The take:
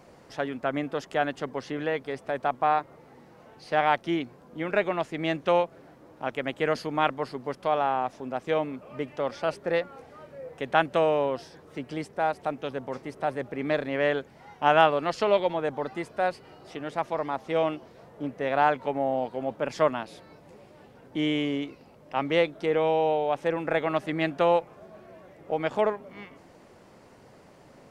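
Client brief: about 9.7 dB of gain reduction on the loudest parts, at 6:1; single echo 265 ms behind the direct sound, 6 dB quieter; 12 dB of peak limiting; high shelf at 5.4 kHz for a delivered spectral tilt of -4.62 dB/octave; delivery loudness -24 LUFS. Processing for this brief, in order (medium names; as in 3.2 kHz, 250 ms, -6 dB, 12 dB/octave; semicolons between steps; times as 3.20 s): treble shelf 5.4 kHz -6 dB; compression 6:1, threshold -26 dBFS; peak limiter -24.5 dBFS; delay 265 ms -6 dB; trim +12 dB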